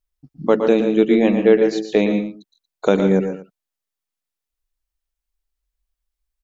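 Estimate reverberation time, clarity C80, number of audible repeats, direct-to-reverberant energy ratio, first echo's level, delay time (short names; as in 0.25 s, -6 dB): none, none, 3, none, -8.5 dB, 0.115 s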